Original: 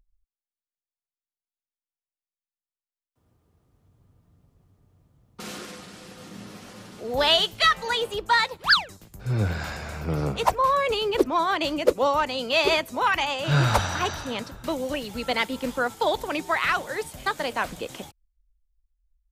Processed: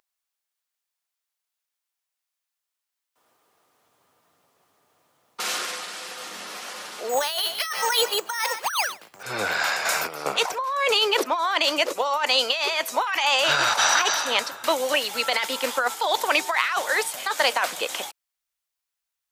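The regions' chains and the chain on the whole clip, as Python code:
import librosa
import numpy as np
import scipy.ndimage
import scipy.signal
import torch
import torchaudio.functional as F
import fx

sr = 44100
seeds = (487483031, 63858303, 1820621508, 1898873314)

y = fx.chain(x, sr, fx.echo_single(ms=144, db=-22.0),
    fx.resample_bad(factor=6, down='filtered', up='hold'), at=(7.09, 9.23))
y = fx.chain(y, sr, fx.high_shelf(hz=6700.0, db=10.0),
    fx.over_compress(threshold_db=-30.0, ratio=-0.5), at=(9.85, 10.26))
y = scipy.signal.sosfilt(scipy.signal.butter(2, 760.0, 'highpass', fs=sr, output='sos'), y)
y = fx.dynamic_eq(y, sr, hz=5700.0, q=2.2, threshold_db=-43.0, ratio=4.0, max_db=4)
y = fx.over_compress(y, sr, threshold_db=-30.0, ratio=-1.0)
y = F.gain(torch.from_numpy(y), 7.5).numpy()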